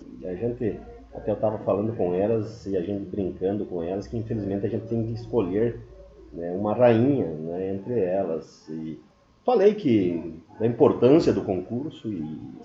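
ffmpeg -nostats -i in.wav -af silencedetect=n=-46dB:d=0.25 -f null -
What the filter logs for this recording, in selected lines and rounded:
silence_start: 9.05
silence_end: 9.46 | silence_duration: 0.41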